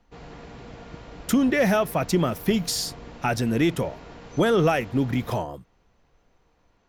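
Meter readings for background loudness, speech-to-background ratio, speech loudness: -43.0 LUFS, 19.0 dB, -24.0 LUFS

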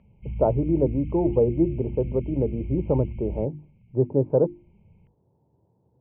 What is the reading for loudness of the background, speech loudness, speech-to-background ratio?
-35.5 LUFS, -24.5 LUFS, 11.0 dB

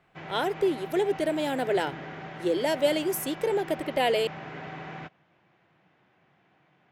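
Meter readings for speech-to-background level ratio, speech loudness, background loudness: 12.5 dB, -28.0 LUFS, -40.5 LUFS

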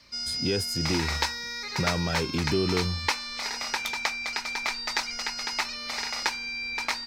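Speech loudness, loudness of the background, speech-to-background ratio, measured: -31.0 LUFS, -29.5 LUFS, -1.5 dB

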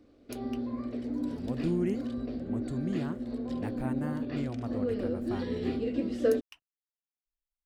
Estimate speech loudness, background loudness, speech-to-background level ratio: -37.5 LUFS, -34.0 LUFS, -3.5 dB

